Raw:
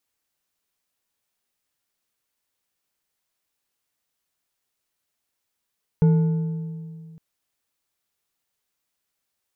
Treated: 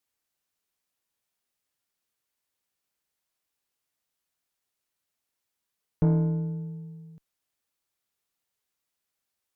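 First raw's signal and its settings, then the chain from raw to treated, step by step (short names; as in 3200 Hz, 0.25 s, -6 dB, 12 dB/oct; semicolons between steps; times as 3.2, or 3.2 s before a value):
metal hit bar, length 1.16 s, lowest mode 162 Hz, decay 2.31 s, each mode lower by 12 dB, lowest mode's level -12 dB
tube stage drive 15 dB, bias 0.7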